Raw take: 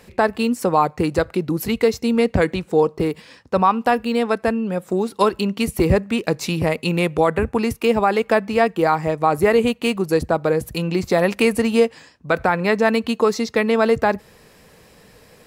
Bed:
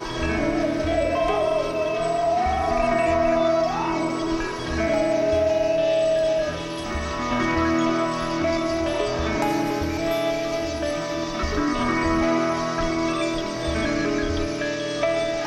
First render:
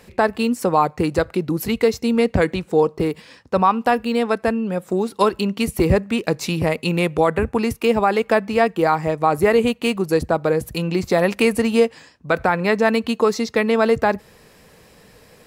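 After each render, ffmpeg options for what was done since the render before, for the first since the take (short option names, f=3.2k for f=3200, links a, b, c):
-af anull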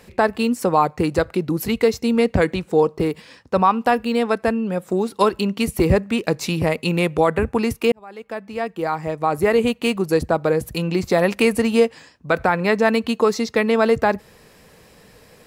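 -filter_complex "[0:a]asplit=2[a][b];[a]atrim=end=7.92,asetpts=PTS-STARTPTS,afade=t=out:st=7.916:d=0.004:c=hsin[c];[b]atrim=start=7.92,asetpts=PTS-STARTPTS,afade=t=in:d=1.87[d];[c][d]concat=n=2:v=0:a=1"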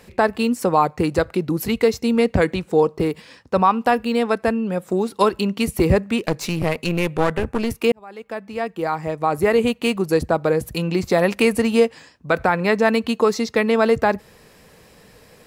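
-filter_complex "[0:a]asettb=1/sr,asplit=3[a][b][c];[a]atrim=end=6.264[d];[b]atrim=start=6.26:end=7.79,asetpts=PTS-STARTPTS,afade=t=in:d=0.004:c=qsin,afade=t=out:st=1.526:d=0.004:c=qsin,aeval=exprs='clip(val(0),-1,0.0447)':c=same[e];[c]atrim=start=7.786[f];[d][e]acrossfade=d=0.004:c1=hsin:c2=qsin[g];[g][f]acrossfade=d=0.004:c1=qsin:c2=hsin"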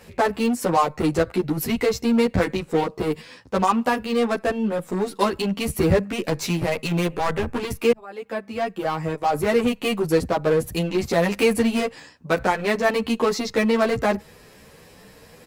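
-filter_complex "[0:a]asplit=2[a][b];[b]aeval=exprs='0.0891*(abs(mod(val(0)/0.0891+3,4)-2)-1)':c=same,volume=-5dB[c];[a][c]amix=inputs=2:normalize=0,asplit=2[d][e];[e]adelay=10.5,afreqshift=1.9[f];[d][f]amix=inputs=2:normalize=1"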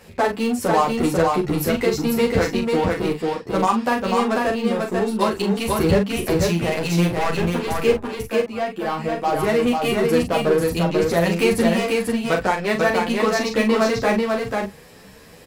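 -filter_complex "[0:a]asplit=2[a][b];[b]adelay=41,volume=-6.5dB[c];[a][c]amix=inputs=2:normalize=0,aecho=1:1:492:0.708"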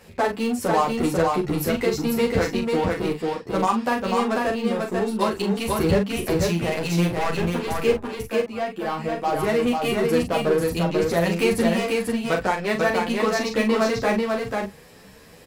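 -af "volume=-2.5dB"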